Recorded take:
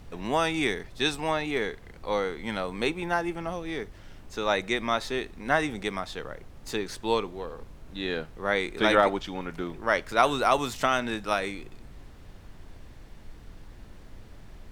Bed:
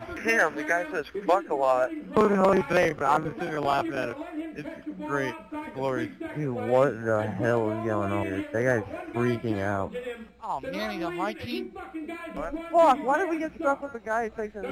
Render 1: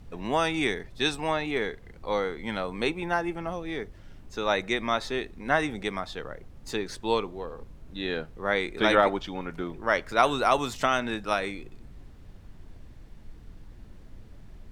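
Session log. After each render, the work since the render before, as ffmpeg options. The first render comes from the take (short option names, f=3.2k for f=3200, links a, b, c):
-af "afftdn=nr=6:nf=-48"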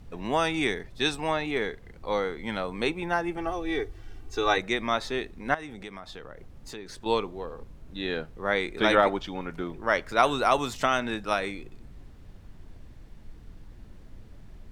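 -filter_complex "[0:a]asettb=1/sr,asplit=3[a][b][c];[a]atrim=end=3.374[d];[b]atrim=start=3.37:end=4.58,asetpts=PTS-STARTPTS,afade=t=in:d=0.004:c=qsin,afade=t=out:st=1.206:d=0.004:c=qsin,aecho=1:1:2.6:0.98,atrim=end_sample=53361[e];[c]atrim=start=4.576[f];[d][e]acrossfade=d=0.004:c1=hsin:c2=qsin[g];[g][f]acrossfade=d=0.004:c1=qsin:c2=hsin,asettb=1/sr,asplit=3[h][i][j];[h]atrim=end=5.544[k];[i]atrim=start=5.54:end=7.06,asetpts=PTS-STARTPTS,afade=t=in:d=0.004:c=qsin,afade=t=out:st=1.516:d=0.004:c=qsin,acompressor=threshold=-39dB:ratio=3:attack=3.2:release=140:knee=1:detection=peak[l];[j]atrim=start=7.056[m];[k][l]acrossfade=d=0.004:c1=hsin:c2=qsin[n];[n][m]acrossfade=d=0.004:c1=qsin:c2=hsin"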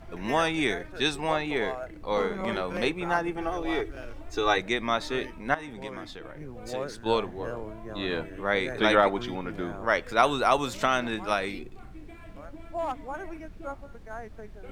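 -filter_complex "[1:a]volume=-12.5dB[a];[0:a][a]amix=inputs=2:normalize=0"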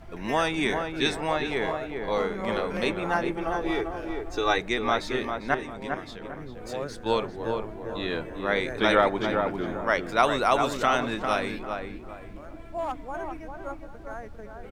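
-filter_complex "[0:a]asplit=2[a][b];[b]adelay=399,lowpass=f=1.6k:p=1,volume=-4.5dB,asplit=2[c][d];[d]adelay=399,lowpass=f=1.6k:p=1,volume=0.34,asplit=2[e][f];[f]adelay=399,lowpass=f=1.6k:p=1,volume=0.34,asplit=2[g][h];[h]adelay=399,lowpass=f=1.6k:p=1,volume=0.34[i];[a][c][e][g][i]amix=inputs=5:normalize=0"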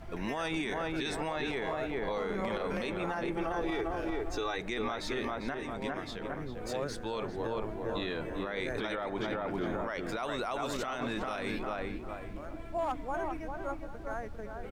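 -af "acompressor=threshold=-25dB:ratio=6,alimiter=level_in=1dB:limit=-24dB:level=0:latency=1:release=28,volume=-1dB"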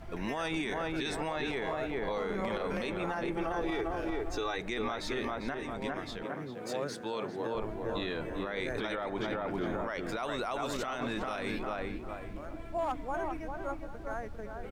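-filter_complex "[0:a]asettb=1/sr,asplit=3[a][b][c];[a]atrim=end=6.234[d];[b]atrim=start=6.23:end=7.55,asetpts=PTS-STARTPTS,afade=t=in:d=0.004:c=qsin,afade=t=out:st=1.316:d=0.004:c=qsin,highpass=f=130:w=0.5412,highpass=f=130:w=1.3066[e];[c]atrim=start=7.546[f];[d][e]acrossfade=d=0.004:c1=hsin:c2=qsin[g];[g][f]acrossfade=d=0.004:c1=qsin:c2=hsin"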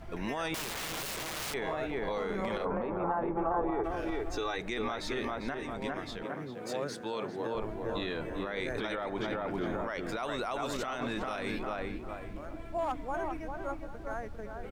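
-filter_complex "[0:a]asettb=1/sr,asplit=3[a][b][c];[a]atrim=end=0.544[d];[b]atrim=start=0.54:end=1.54,asetpts=PTS-STARTPTS,afade=t=in:d=0.004:c=qsin,afade=t=out:st=0.996:d=0.004:c=qsin,aeval=exprs='(mod(42.2*val(0)+1,2)-1)/42.2':c=same[e];[c]atrim=start=1.536[f];[d][e]acrossfade=d=0.004:c1=hsin:c2=qsin[g];[g][f]acrossfade=d=0.004:c1=qsin:c2=hsin,asplit=3[h][i][j];[h]afade=t=out:st=2.64:d=0.02[k];[i]lowpass=f=1k:t=q:w=2.2,afade=t=in:st=2.64:d=0.02,afade=t=out:st=3.83:d=0.02[l];[j]afade=t=in:st=3.83:d=0.02[m];[k][l][m]amix=inputs=3:normalize=0"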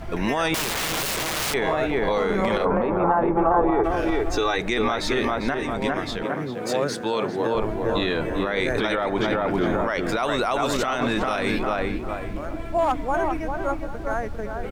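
-af "volume=11.5dB"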